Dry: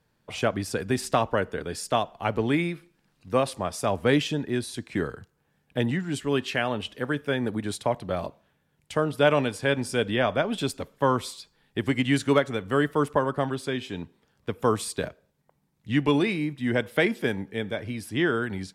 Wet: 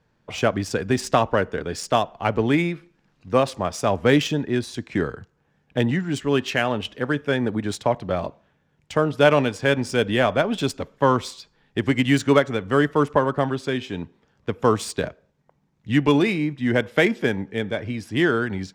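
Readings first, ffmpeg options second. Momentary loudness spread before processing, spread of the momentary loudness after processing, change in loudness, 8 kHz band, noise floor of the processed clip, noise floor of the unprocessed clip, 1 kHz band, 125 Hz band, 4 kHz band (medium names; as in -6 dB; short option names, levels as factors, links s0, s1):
9 LU, 9 LU, +4.5 dB, +2.0 dB, -67 dBFS, -71 dBFS, +4.5 dB, +4.5 dB, +3.5 dB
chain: -af "aexciter=amount=2.2:drive=1.2:freq=5600,adynamicsmooth=sensitivity=4.5:basefreq=4500,volume=1.68"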